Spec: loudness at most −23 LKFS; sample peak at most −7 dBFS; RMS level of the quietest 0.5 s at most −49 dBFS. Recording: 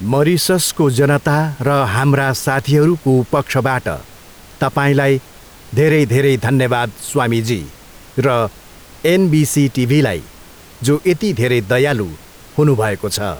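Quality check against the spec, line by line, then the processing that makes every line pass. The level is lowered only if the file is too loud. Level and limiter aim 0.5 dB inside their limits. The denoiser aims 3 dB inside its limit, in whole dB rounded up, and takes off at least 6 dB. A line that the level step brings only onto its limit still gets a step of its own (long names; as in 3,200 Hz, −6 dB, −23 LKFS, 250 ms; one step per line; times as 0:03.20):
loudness −15.5 LKFS: out of spec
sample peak −4.0 dBFS: out of spec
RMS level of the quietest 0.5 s −40 dBFS: out of spec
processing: broadband denoise 6 dB, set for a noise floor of −40 dBFS
level −8 dB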